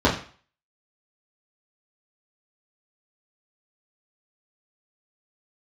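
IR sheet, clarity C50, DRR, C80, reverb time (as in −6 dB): 9.0 dB, −6.0 dB, 13.0 dB, 0.40 s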